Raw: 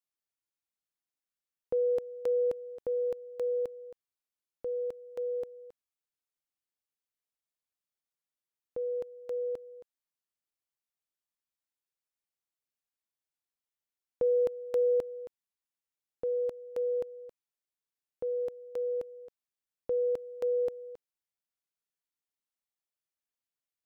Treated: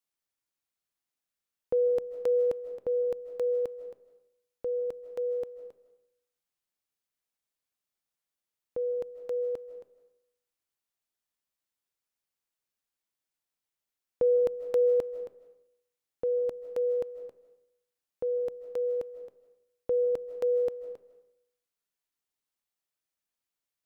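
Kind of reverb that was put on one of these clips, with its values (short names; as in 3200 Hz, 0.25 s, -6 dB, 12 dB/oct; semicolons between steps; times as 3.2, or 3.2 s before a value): digital reverb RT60 0.72 s, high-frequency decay 0.7×, pre-delay 0.115 s, DRR 12.5 dB; gain +3 dB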